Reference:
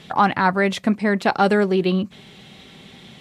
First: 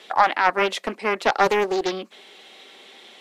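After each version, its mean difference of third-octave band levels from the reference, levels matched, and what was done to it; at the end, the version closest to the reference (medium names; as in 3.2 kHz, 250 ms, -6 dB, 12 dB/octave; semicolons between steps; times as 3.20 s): 5.5 dB: high-pass 360 Hz 24 dB/octave; loudspeaker Doppler distortion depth 0.38 ms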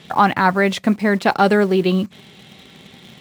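2.0 dB: high-pass 58 Hz 12 dB/octave; in parallel at -9.5 dB: bit crusher 6-bit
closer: second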